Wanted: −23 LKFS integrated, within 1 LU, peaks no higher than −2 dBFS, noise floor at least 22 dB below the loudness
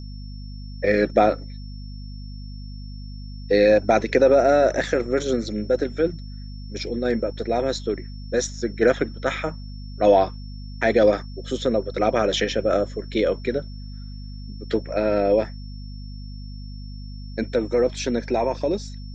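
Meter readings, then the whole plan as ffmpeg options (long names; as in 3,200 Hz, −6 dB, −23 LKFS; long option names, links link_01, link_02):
mains hum 50 Hz; hum harmonics up to 250 Hz; level of the hum −33 dBFS; interfering tone 5,400 Hz; level of the tone −48 dBFS; integrated loudness −22.0 LKFS; sample peak −5.5 dBFS; target loudness −23.0 LKFS
→ -af "bandreject=frequency=50:width_type=h:width=4,bandreject=frequency=100:width_type=h:width=4,bandreject=frequency=150:width_type=h:width=4,bandreject=frequency=200:width_type=h:width=4,bandreject=frequency=250:width_type=h:width=4"
-af "bandreject=frequency=5400:width=30"
-af "volume=-1dB"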